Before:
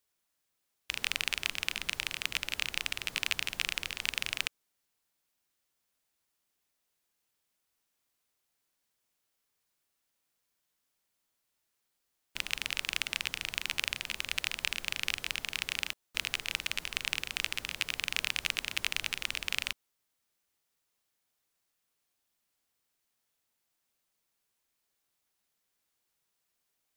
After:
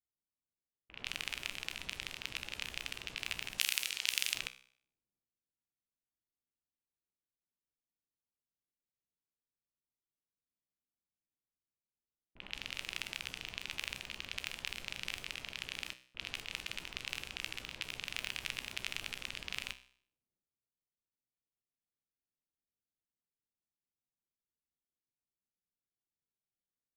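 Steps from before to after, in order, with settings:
low-pass that shuts in the quiet parts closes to 310 Hz, open at −33 dBFS
0:03.58–0:04.34: spectral tilt +4.5 dB per octave
transient designer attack +2 dB, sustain +8 dB
tuned comb filter 64 Hz, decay 0.53 s, harmonics all, mix 60%
level −4 dB

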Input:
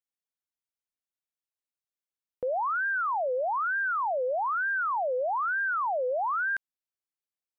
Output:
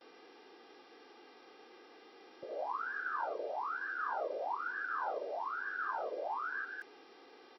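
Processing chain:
three-band delay without the direct sound lows, mids, highs 80/250 ms, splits 450/1,800 Hz
hum with harmonics 400 Hz, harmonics 14, −50 dBFS −5 dB per octave
random phases in short frames
noise gate with hold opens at −47 dBFS
high-pass filter 110 Hz 12 dB per octave
level −8 dB

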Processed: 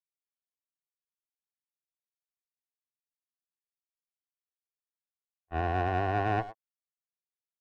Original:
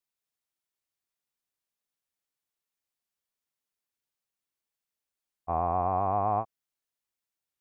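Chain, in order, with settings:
stylus tracing distortion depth 0.4 ms
high-pass filter 53 Hz
noise gate −27 dBFS, range −43 dB
low-shelf EQ 140 Hz +9 dB
far-end echo of a speakerphone 100 ms, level −8 dB
leveller curve on the samples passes 1
low-pass filter 1,900 Hz 6 dB per octave
low-shelf EQ 400 Hz +9 dB
level −4.5 dB

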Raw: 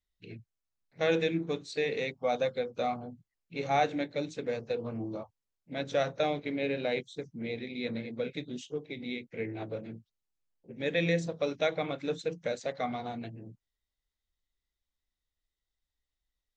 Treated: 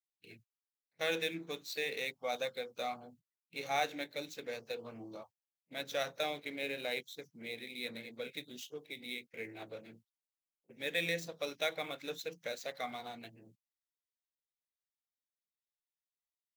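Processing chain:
running median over 5 samples
noise gate −50 dBFS, range −13 dB
spectral tilt +3.5 dB per octave
level −5.5 dB

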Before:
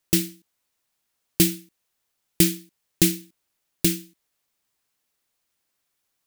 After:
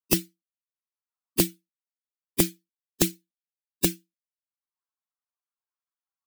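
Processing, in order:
spectral dynamics exaggerated over time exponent 2
multiband upward and downward compressor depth 100%
level +2 dB

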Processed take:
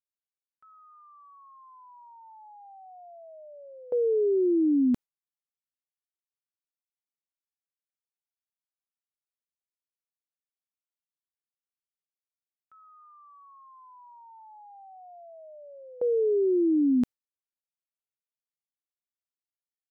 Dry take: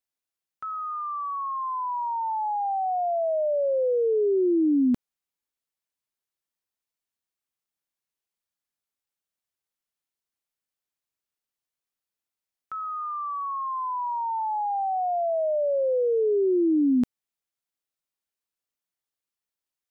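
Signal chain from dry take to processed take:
noise gate with hold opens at −20 dBFS
level −1.5 dB

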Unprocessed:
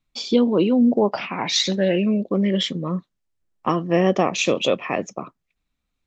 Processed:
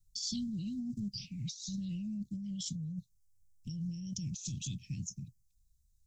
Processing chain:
inverse Chebyshev band-stop filter 500–1,500 Hz, stop band 80 dB
compressor whose output falls as the input rises −43 dBFS, ratio −1
level +4 dB

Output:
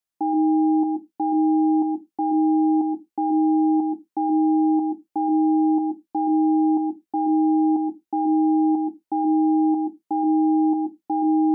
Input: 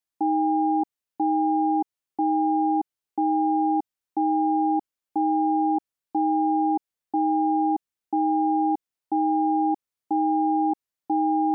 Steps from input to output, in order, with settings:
on a send: parametric band 250 Hz +8.5 dB 1.9 octaves + convolution reverb RT60 0.15 s, pre-delay 121 ms, DRR 11.5 dB

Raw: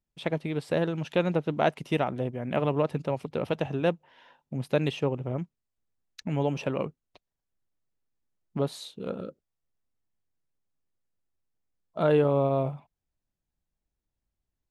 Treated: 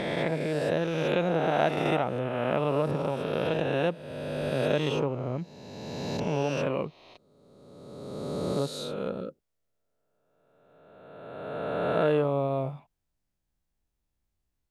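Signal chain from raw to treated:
peak hold with a rise ahead of every peak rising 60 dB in 1.97 s
in parallel at −2 dB: downward compressor, threshold −30 dBFS, peak gain reduction 14 dB
on the sum: level −5.5 dB

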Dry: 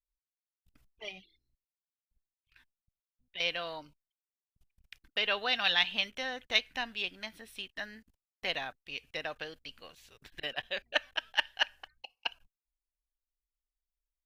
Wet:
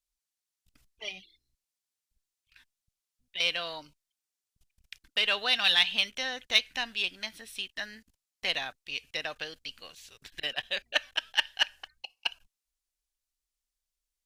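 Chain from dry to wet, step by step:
parametric band 6,800 Hz +10 dB 2.7 octaves
in parallel at −7 dB: soft clipping −23 dBFS, distortion −6 dB
on the sum: level −3.5 dB

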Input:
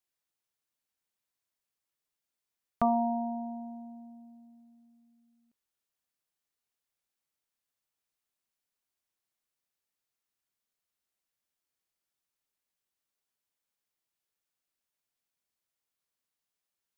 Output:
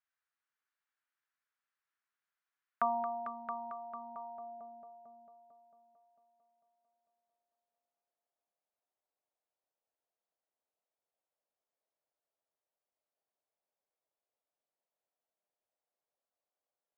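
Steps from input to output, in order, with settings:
echo machine with several playback heads 224 ms, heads all three, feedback 47%, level −10.5 dB
band-pass filter sweep 1,500 Hz → 620 Hz, 0:03.62–0:04.69
level +6 dB

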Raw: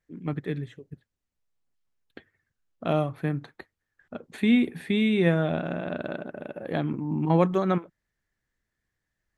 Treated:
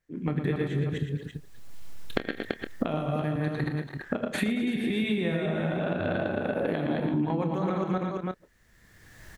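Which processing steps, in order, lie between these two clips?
delay that plays each chunk backwards 140 ms, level −1.5 dB
camcorder AGC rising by 23 dB per second
0:05.98–0:06.38: parametric band 96 Hz +15 dB 0.24 octaves
multi-tap delay 43/78/115/229/335 ms −15.5/−19/−8.5/−15/−8.5 dB
downward compressor 10 to 1, threshold −24 dBFS, peak gain reduction 13 dB
double-tracking delay 27 ms −12 dB

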